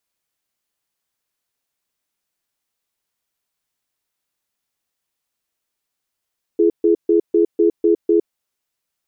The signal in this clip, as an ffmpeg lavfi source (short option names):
-f lavfi -i "aevalsrc='0.211*(sin(2*PI*338*t)+sin(2*PI*421*t))*clip(min(mod(t,0.25),0.11-mod(t,0.25))/0.005,0,1)':d=1.69:s=44100"